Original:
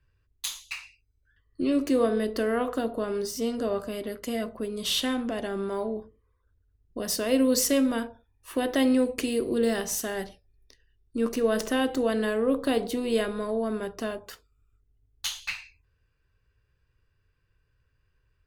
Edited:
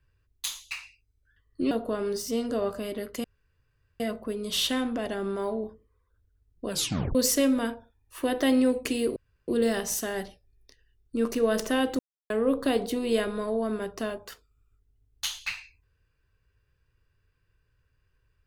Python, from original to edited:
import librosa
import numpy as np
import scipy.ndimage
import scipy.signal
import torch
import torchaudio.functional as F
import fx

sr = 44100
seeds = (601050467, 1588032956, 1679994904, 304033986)

y = fx.edit(x, sr, fx.cut(start_s=1.71, length_s=1.09),
    fx.insert_room_tone(at_s=4.33, length_s=0.76),
    fx.tape_stop(start_s=7.02, length_s=0.46),
    fx.insert_room_tone(at_s=9.49, length_s=0.32),
    fx.silence(start_s=12.0, length_s=0.31), tone=tone)